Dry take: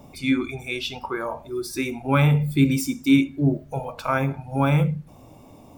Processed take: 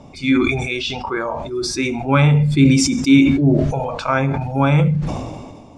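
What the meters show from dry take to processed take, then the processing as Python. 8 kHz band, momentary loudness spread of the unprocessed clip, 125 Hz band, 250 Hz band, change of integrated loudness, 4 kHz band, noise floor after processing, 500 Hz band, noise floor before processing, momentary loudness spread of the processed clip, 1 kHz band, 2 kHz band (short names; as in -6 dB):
+10.5 dB, 11 LU, +6.0 dB, +6.5 dB, +6.5 dB, +7.5 dB, -41 dBFS, +6.5 dB, -48 dBFS, 11 LU, +5.5 dB, +6.0 dB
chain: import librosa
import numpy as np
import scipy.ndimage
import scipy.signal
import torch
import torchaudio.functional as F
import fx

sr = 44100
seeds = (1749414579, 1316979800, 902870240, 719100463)

y = scipy.signal.sosfilt(scipy.signal.butter(4, 7200.0, 'lowpass', fs=sr, output='sos'), x)
y = fx.sustainer(y, sr, db_per_s=35.0)
y = y * librosa.db_to_amplitude(4.5)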